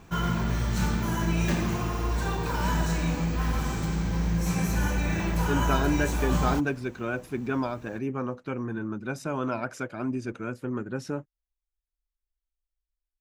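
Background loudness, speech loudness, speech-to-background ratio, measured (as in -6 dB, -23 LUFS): -28.0 LUFS, -31.5 LUFS, -3.5 dB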